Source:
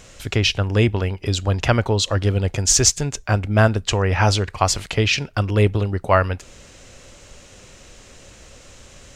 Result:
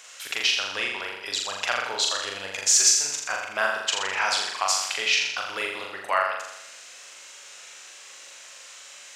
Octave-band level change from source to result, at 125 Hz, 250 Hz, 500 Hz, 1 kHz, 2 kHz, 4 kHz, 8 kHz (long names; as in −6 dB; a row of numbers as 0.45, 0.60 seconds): below −35 dB, −23.5 dB, −12.0 dB, −4.0 dB, −0.5 dB, −0.5 dB, −0.5 dB